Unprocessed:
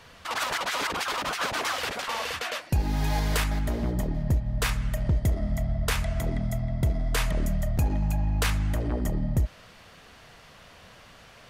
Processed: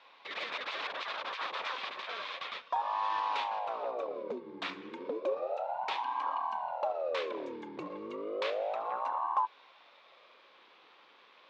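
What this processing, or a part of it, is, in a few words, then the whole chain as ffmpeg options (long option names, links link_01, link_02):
voice changer toy: -af "aeval=exprs='val(0)*sin(2*PI*590*n/s+590*0.6/0.32*sin(2*PI*0.32*n/s))':channel_layout=same,highpass=440,equalizer=frequency=540:width_type=q:width=4:gain=7,equalizer=frequency=1100:width_type=q:width=4:gain=9,equalizer=frequency=2400:width_type=q:width=4:gain=5,equalizer=frequency=3600:width_type=q:width=4:gain=7,lowpass=frequency=4500:width=0.5412,lowpass=frequency=4500:width=1.3066,volume=-9dB"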